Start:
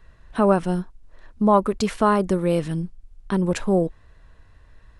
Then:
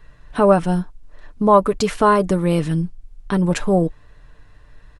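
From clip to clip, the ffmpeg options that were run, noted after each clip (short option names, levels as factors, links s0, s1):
-af "aecho=1:1:6.8:0.42,volume=1.5"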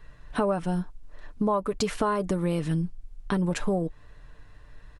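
-af "acompressor=threshold=0.1:ratio=6,volume=0.75"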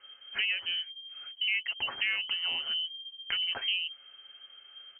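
-af "highshelf=f=2100:g=10.5,lowpass=f=2700:t=q:w=0.5098,lowpass=f=2700:t=q:w=0.6013,lowpass=f=2700:t=q:w=0.9,lowpass=f=2700:t=q:w=2.563,afreqshift=-3200,volume=0.473"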